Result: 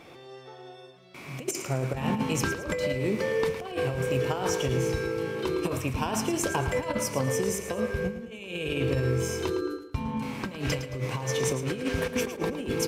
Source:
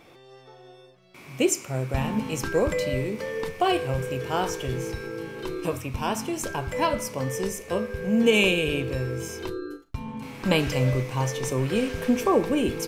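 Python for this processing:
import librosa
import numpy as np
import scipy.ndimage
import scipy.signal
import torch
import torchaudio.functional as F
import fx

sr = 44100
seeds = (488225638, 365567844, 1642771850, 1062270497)

p1 = fx.over_compress(x, sr, threshold_db=-28.0, ratio=-0.5)
p2 = scipy.signal.sosfilt(scipy.signal.butter(2, 49.0, 'highpass', fs=sr, output='sos'), p1)
p3 = fx.high_shelf(p2, sr, hz=11000.0, db=-5.5)
y = p3 + fx.echo_feedback(p3, sr, ms=110, feedback_pct=38, wet_db=-11.0, dry=0)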